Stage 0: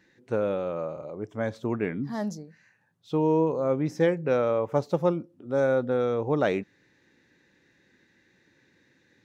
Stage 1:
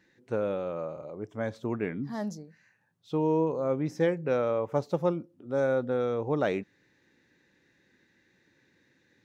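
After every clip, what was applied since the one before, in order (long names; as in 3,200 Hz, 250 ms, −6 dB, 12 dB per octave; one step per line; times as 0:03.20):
de-essing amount 80%
level −3 dB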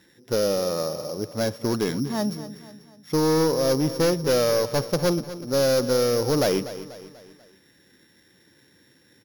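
samples sorted by size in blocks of 8 samples
hard clipping −25 dBFS, distortion −11 dB
repeating echo 244 ms, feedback 47%, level −14 dB
level +8 dB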